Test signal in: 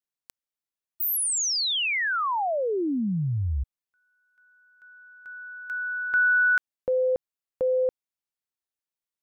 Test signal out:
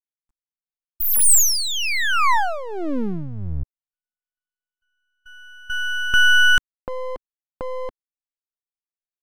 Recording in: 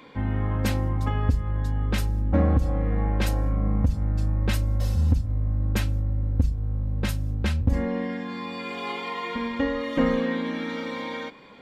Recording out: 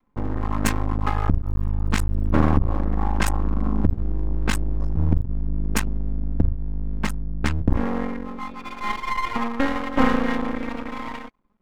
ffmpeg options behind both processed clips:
-af "anlmdn=63.1,equalizer=f=125:t=o:w=1:g=-9,equalizer=f=250:t=o:w=1:g=4,equalizer=f=500:t=o:w=1:g=-11,equalizer=f=1000:t=o:w=1:g=9,equalizer=f=4000:t=o:w=1:g=-5,equalizer=f=8000:t=o:w=1:g=11,aeval=exprs='max(val(0),0)':c=same,volume=2.51"

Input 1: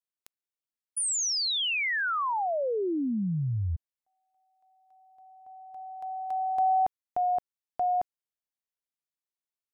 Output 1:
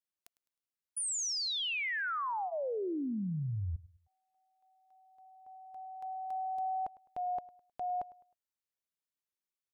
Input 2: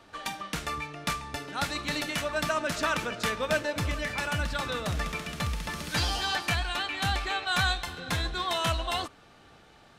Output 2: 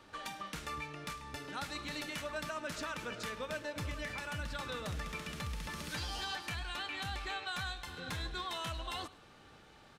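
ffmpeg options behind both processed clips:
-af "bandreject=f=690:w=12,acompressor=threshold=0.0355:ratio=6:attack=0.17:release=634:knee=6:detection=peak,aecho=1:1:104|208|312:0.106|0.0371|0.013,volume=0.708"

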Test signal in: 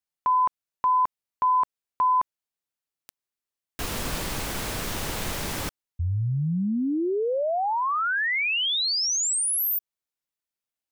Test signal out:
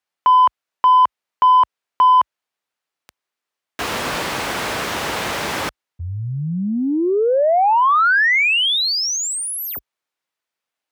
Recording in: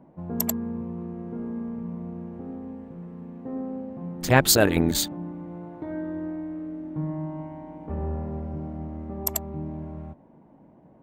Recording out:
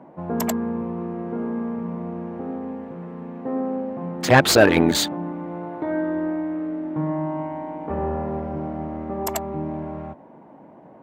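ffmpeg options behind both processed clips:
-filter_complex "[0:a]asplit=2[s0][s1];[s1]highpass=f=720:p=1,volume=8.91,asoftclip=type=tanh:threshold=0.708[s2];[s0][s2]amix=inputs=2:normalize=0,lowpass=f=2000:p=1,volume=0.501,highpass=f=50:w=0.5412,highpass=f=50:w=1.3066,volume=1.12"

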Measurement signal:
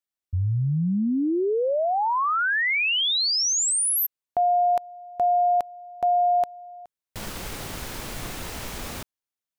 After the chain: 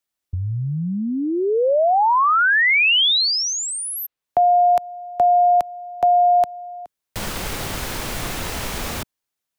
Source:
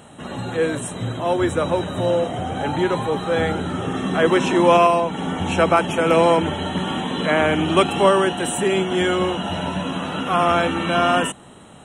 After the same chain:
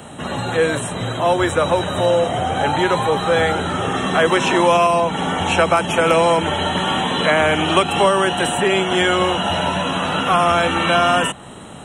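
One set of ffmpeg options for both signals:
-filter_complex "[0:a]acrossover=split=200|410|4200[s0][s1][s2][s3];[s0]acompressor=threshold=0.02:ratio=4[s4];[s1]acompressor=threshold=0.00501:ratio=4[s5];[s2]acompressor=threshold=0.0891:ratio=4[s6];[s3]acompressor=threshold=0.0126:ratio=4[s7];[s4][s5][s6][s7]amix=inputs=4:normalize=0,volume=2.51"

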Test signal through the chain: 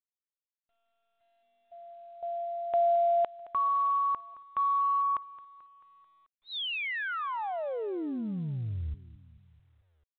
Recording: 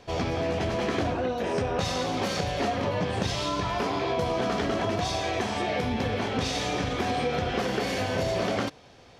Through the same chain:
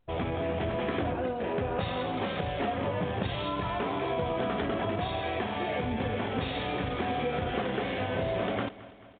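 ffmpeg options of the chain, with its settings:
-af "anlmdn=10,aecho=1:1:219|438|657|876|1095:0.133|0.0747|0.0418|0.0234|0.0131,volume=0.708" -ar 8000 -c:a pcm_mulaw

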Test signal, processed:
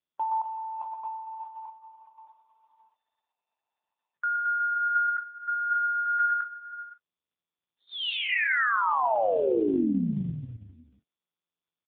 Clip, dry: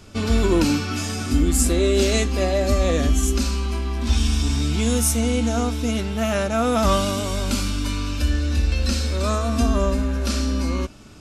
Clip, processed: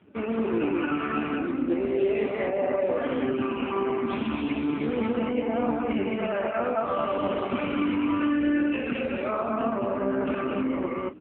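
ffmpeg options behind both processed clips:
-filter_complex "[0:a]lowpass=f=2700:w=0.5412,lowpass=f=2700:w=1.3066,afftdn=nr=14:nf=-38,highpass=300,areverse,acompressor=threshold=0.0251:ratio=10,areverse,asplit=2[s0][s1];[s1]adelay=40,volume=0.211[s2];[s0][s2]amix=inputs=2:normalize=0,asplit=2[s3][s4];[s4]aecho=0:1:119.5|221.6:0.447|0.891[s5];[s3][s5]amix=inputs=2:normalize=0,volume=2.37" -ar 8000 -c:a libopencore_amrnb -b:a 5150

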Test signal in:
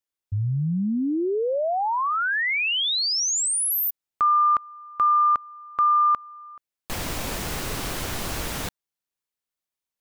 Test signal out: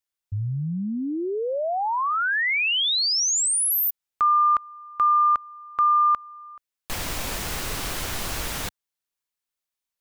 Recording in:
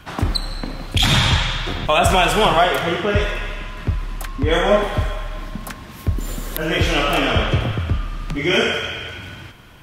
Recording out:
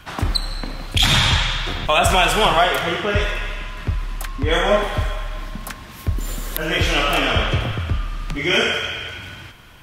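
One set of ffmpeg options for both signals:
-af "equalizer=f=230:w=0.33:g=-5,volume=1.19"

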